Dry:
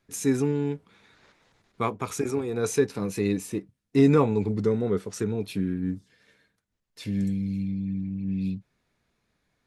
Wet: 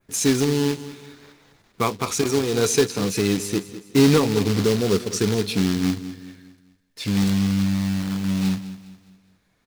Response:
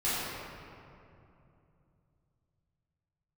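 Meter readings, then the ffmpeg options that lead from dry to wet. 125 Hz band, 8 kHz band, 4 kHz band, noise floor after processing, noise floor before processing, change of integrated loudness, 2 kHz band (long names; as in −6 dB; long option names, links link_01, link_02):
+5.0 dB, +11.0 dB, +16.5 dB, −66 dBFS, −78 dBFS, +5.0 dB, +9.0 dB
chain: -filter_complex "[0:a]acontrast=59,asplit=2[link_01][link_02];[link_02]adelay=183,lowpass=frequency=1100:poles=1,volume=-22dB,asplit=2[link_03][link_04];[link_04]adelay=183,lowpass=frequency=1100:poles=1,volume=0.42,asplit=2[link_05][link_06];[link_06]adelay=183,lowpass=frequency=1100:poles=1,volume=0.42[link_07];[link_03][link_05][link_07]amix=inputs=3:normalize=0[link_08];[link_01][link_08]amix=inputs=2:normalize=0,acrusher=bits=3:mode=log:mix=0:aa=0.000001,adynamicequalizer=threshold=0.00631:dfrequency=4600:dqfactor=0.96:tfrequency=4600:tqfactor=0.96:attack=5:release=100:ratio=0.375:range=4:mode=boostabove:tftype=bell,alimiter=limit=-7.5dB:level=0:latency=1:release=352,asplit=2[link_09][link_10];[link_10]aecho=0:1:205|410|615|820:0.178|0.0747|0.0314|0.0132[link_11];[link_09][link_11]amix=inputs=2:normalize=0"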